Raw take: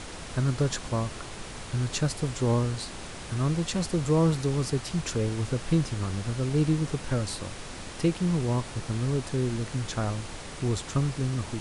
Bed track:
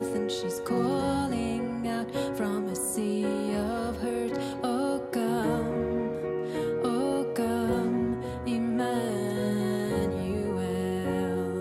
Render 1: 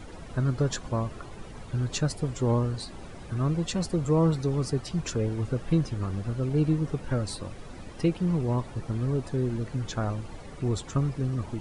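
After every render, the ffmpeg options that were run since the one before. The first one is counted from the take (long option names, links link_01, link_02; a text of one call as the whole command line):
ffmpeg -i in.wav -af "afftdn=noise_reduction=13:noise_floor=-40" out.wav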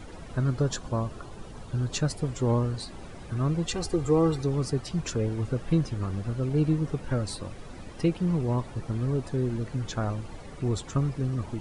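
ffmpeg -i in.wav -filter_complex "[0:a]asettb=1/sr,asplit=3[link_01][link_02][link_03];[link_01]atrim=end=0.594[link_04];[link_02]atrim=start=0.59:end=1.94,asetpts=PTS-STARTPTS,afade=type=in:duration=0.004:curve=qsin,afade=type=out:start_time=1.346:duration=0.004:curve=qsin,equalizer=frequency=2100:width_type=o:width=0.52:gain=-5.5[link_05];[link_03]atrim=start=1.936[link_06];[link_04][link_05]acrossfade=duration=0.004:curve1=hsin:curve2=qsin[link_07];[link_07][link_06]acrossfade=duration=0.004:curve1=qsin:curve2=hsin,asettb=1/sr,asplit=3[link_08][link_09][link_10];[link_08]atrim=end=3.684[link_11];[link_09]atrim=start=3.68:end=4.43,asetpts=PTS-STARTPTS,afade=type=in:duration=0.004:curve=qsin,afade=type=out:start_time=0.746:duration=0.004:curve=qsin,aecho=1:1:2.5:0.65,atrim=end_sample=33075[link_12];[link_10]atrim=start=4.426[link_13];[link_11][link_12]acrossfade=duration=0.004:curve1=hsin:curve2=qsin[link_14];[link_14][link_13]acrossfade=duration=0.004:curve1=qsin:curve2=hsin" out.wav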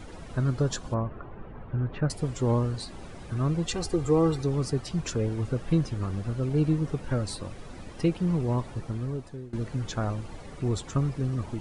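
ffmpeg -i in.wav -filter_complex "[0:a]asettb=1/sr,asplit=3[link_01][link_02][link_03];[link_01]atrim=end=0.944[link_04];[link_02]atrim=start=0.94:end=2.1,asetpts=PTS-STARTPTS,afade=type=in:duration=0.004:curve=qsin,afade=type=out:start_time=1.156:duration=0.004:curve=qsin,lowpass=frequency=2200:width=0.5412,lowpass=frequency=2200:width=1.3066[link_05];[link_03]atrim=start=2.096[link_06];[link_04][link_05]acrossfade=duration=0.004:curve1=hsin:curve2=qsin[link_07];[link_07][link_06]acrossfade=duration=0.004:curve1=qsin:curve2=hsin,asplit=2[link_08][link_09];[link_08]atrim=end=9.53,asetpts=PTS-STARTPTS,afade=type=out:start_time=8.73:duration=0.8:silence=0.1[link_10];[link_09]atrim=start=9.53,asetpts=PTS-STARTPTS,afade=type=in:duration=0.004:curve=hsin:silence=0.1[link_11];[link_10][link_11]concat=n=2:v=0:a=1" out.wav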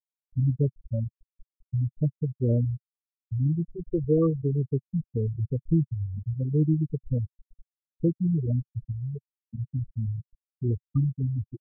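ffmpeg -i in.wav -af "afftfilt=real='re*gte(hypot(re,im),0.224)':imag='im*gte(hypot(re,im),0.224)':win_size=1024:overlap=0.75,equalizer=frequency=130:width=1.5:gain=3" out.wav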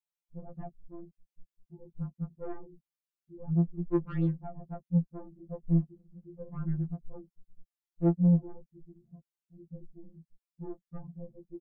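ffmpeg -i in.wav -af "asoftclip=type=tanh:threshold=-24dB,afftfilt=real='re*2.83*eq(mod(b,8),0)':imag='im*2.83*eq(mod(b,8),0)':win_size=2048:overlap=0.75" out.wav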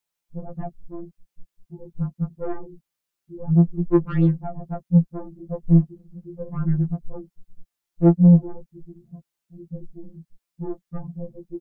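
ffmpeg -i in.wav -af "volume=10.5dB" out.wav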